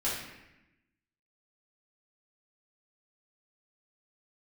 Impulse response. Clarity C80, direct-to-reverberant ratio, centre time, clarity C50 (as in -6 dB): 4.5 dB, -9.0 dB, 62 ms, 1.5 dB